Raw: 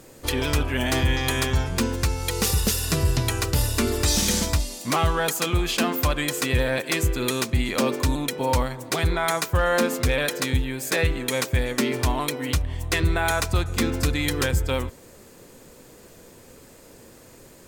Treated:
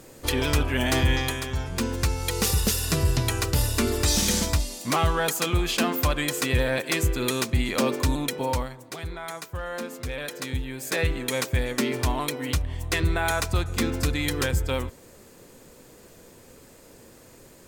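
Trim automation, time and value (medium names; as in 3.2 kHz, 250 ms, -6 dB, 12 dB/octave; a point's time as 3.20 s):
1.19 s 0 dB
1.41 s -8 dB
2.03 s -1 dB
8.35 s -1 dB
8.95 s -12 dB
9.90 s -12 dB
11.10 s -2 dB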